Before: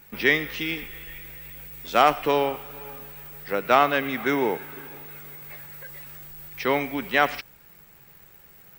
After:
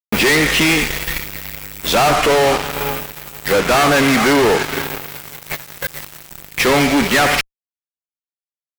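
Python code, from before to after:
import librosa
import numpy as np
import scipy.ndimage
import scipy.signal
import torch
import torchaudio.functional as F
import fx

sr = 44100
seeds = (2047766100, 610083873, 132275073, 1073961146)

y = fx.env_lowpass_down(x, sr, base_hz=2400.0, full_db=-15.5)
y = fx.fuzz(y, sr, gain_db=42.0, gate_db=-40.0)
y = y * librosa.db_to_amplitude(2.0)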